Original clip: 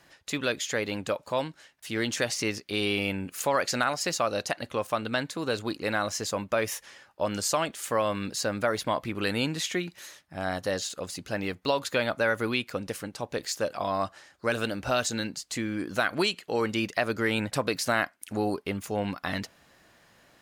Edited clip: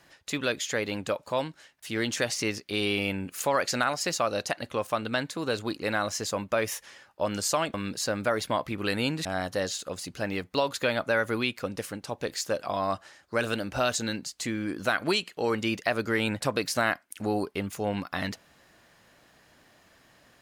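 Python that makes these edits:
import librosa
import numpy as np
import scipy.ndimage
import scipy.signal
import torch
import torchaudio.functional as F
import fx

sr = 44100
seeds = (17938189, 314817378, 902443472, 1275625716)

y = fx.edit(x, sr, fx.cut(start_s=7.74, length_s=0.37),
    fx.cut(start_s=9.62, length_s=0.74), tone=tone)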